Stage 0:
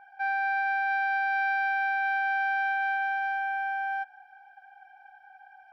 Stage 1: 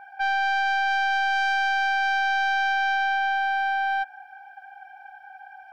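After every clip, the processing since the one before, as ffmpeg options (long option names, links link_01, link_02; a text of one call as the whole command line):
ffmpeg -i in.wav -filter_complex "[0:a]bandreject=frequency=2100:width=14,asplit=2[link_01][link_02];[link_02]aeval=exprs='0.1*sin(PI/2*2.24*val(0)/0.1)':channel_layout=same,volume=-7.5dB[link_03];[link_01][link_03]amix=inputs=2:normalize=0" out.wav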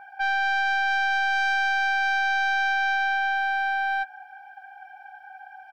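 ffmpeg -i in.wav -filter_complex "[0:a]asplit=2[link_01][link_02];[link_02]adelay=12,volume=-12dB[link_03];[link_01][link_03]amix=inputs=2:normalize=0" out.wav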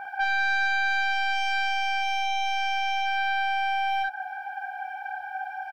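ffmpeg -i in.wav -filter_complex "[0:a]alimiter=level_in=3.5dB:limit=-24dB:level=0:latency=1:release=229,volume=-3.5dB,asplit=2[link_01][link_02];[link_02]aecho=0:1:38|54:0.251|0.668[link_03];[link_01][link_03]amix=inputs=2:normalize=0,volume=8dB" out.wav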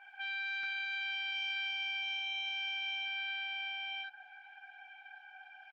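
ffmpeg -i in.wav -af "bandpass=frequency=2800:width_type=q:width=4.9:csg=0" -ar 48000 -c:a libopus -b:a 16k out.opus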